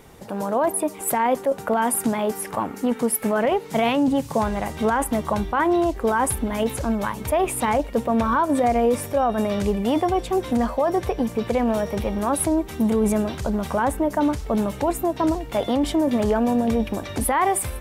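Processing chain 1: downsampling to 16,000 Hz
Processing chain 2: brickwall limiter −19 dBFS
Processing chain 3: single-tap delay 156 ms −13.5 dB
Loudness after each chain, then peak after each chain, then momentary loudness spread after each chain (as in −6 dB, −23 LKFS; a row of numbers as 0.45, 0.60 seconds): −22.5, −27.5, −22.5 LKFS; −11.0, −19.0, −10.0 dBFS; 5, 3, 5 LU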